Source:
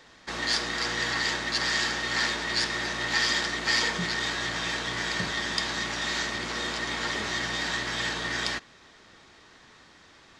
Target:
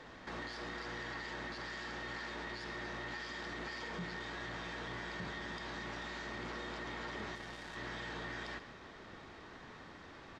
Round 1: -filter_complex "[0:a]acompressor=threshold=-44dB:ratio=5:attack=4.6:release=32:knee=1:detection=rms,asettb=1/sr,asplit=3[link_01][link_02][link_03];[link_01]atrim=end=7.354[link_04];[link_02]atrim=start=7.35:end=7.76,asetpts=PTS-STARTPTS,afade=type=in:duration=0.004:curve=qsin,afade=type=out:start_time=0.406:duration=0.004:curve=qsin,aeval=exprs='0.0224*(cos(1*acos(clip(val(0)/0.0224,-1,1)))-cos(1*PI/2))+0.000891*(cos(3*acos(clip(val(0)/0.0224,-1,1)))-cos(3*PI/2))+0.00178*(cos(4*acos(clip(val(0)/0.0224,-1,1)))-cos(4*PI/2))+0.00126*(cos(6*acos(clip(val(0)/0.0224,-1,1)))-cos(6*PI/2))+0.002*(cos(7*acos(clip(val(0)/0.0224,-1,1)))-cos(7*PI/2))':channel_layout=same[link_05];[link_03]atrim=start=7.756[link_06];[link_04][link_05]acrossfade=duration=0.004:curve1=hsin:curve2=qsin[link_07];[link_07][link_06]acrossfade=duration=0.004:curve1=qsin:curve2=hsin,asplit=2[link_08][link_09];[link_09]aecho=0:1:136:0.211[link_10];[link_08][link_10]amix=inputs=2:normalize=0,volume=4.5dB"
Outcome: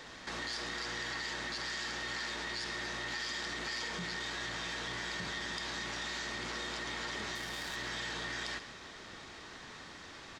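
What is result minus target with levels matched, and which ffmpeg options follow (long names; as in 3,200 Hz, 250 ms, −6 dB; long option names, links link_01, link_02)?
1,000 Hz band −3.5 dB
-filter_complex "[0:a]acompressor=threshold=-44dB:ratio=5:attack=4.6:release=32:knee=1:detection=rms,lowpass=frequency=1300:poles=1,asettb=1/sr,asplit=3[link_01][link_02][link_03];[link_01]atrim=end=7.354[link_04];[link_02]atrim=start=7.35:end=7.76,asetpts=PTS-STARTPTS,afade=type=in:duration=0.004:curve=qsin,afade=type=out:start_time=0.406:duration=0.004:curve=qsin,aeval=exprs='0.0224*(cos(1*acos(clip(val(0)/0.0224,-1,1)))-cos(1*PI/2))+0.000891*(cos(3*acos(clip(val(0)/0.0224,-1,1)))-cos(3*PI/2))+0.00178*(cos(4*acos(clip(val(0)/0.0224,-1,1)))-cos(4*PI/2))+0.00126*(cos(6*acos(clip(val(0)/0.0224,-1,1)))-cos(6*PI/2))+0.002*(cos(7*acos(clip(val(0)/0.0224,-1,1)))-cos(7*PI/2))':channel_layout=same[link_05];[link_03]atrim=start=7.756[link_06];[link_04][link_05]acrossfade=duration=0.004:curve1=hsin:curve2=qsin[link_07];[link_07][link_06]acrossfade=duration=0.004:curve1=qsin:curve2=hsin,asplit=2[link_08][link_09];[link_09]aecho=0:1:136:0.211[link_10];[link_08][link_10]amix=inputs=2:normalize=0,volume=4.5dB"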